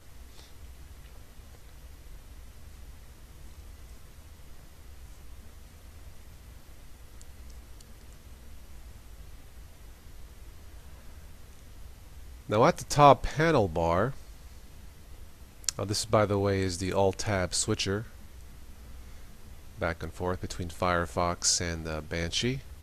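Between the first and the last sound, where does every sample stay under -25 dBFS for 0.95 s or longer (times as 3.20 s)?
14.07–15.64 s
17.98–19.82 s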